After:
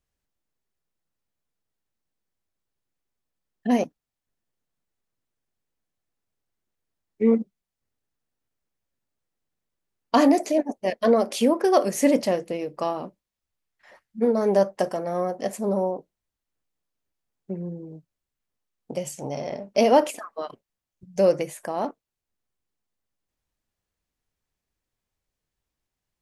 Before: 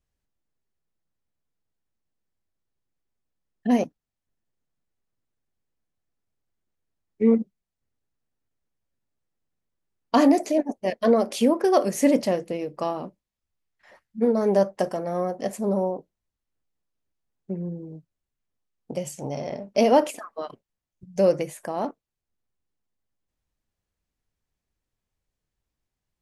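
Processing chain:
low-shelf EQ 270 Hz −4.5 dB
level +1.5 dB

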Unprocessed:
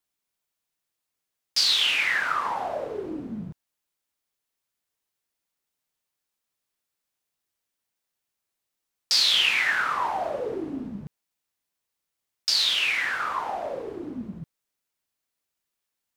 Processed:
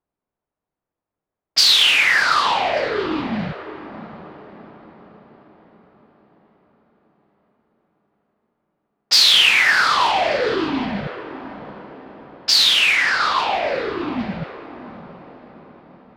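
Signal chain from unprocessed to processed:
feedback delay with all-pass diffusion 693 ms, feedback 51%, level −13 dB
low-pass that shuts in the quiet parts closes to 860 Hz, open at −20 dBFS
in parallel at −4 dB: soft clipping −22 dBFS, distortion −11 dB
on the sum: level +5.5 dB

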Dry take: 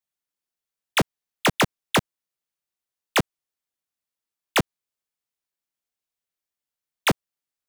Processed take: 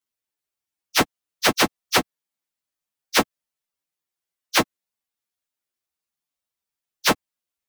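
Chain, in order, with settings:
phase-vocoder pitch shift without resampling +9 semitones
level +8 dB

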